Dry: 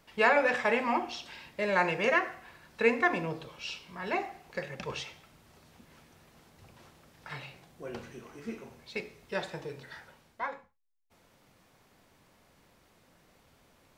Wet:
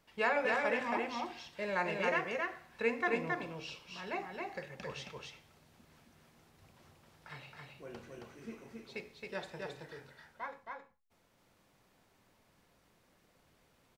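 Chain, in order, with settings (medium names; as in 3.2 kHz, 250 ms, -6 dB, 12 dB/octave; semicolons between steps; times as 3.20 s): delay 270 ms -3 dB; trim -7.5 dB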